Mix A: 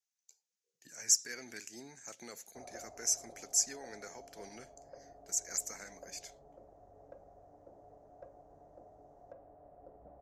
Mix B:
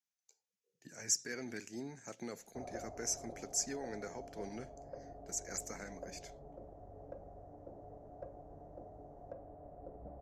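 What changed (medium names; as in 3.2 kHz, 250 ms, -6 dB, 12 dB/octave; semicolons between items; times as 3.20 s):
speech: add treble shelf 4.9 kHz -9 dB; master: add bass shelf 480 Hz +10.5 dB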